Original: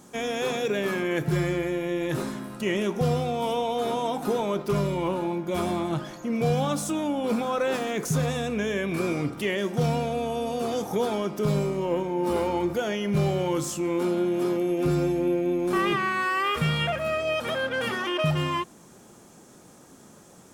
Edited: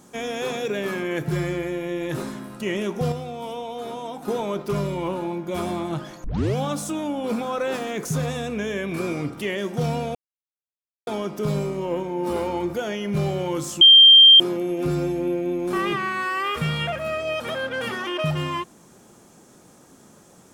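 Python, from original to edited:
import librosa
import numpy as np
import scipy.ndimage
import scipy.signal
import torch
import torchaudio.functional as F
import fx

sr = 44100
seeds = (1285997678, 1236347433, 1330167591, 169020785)

y = fx.edit(x, sr, fx.clip_gain(start_s=3.12, length_s=1.16, db=-5.5),
    fx.tape_start(start_s=6.24, length_s=0.32),
    fx.silence(start_s=10.15, length_s=0.92),
    fx.bleep(start_s=13.81, length_s=0.59, hz=3170.0, db=-6.5), tone=tone)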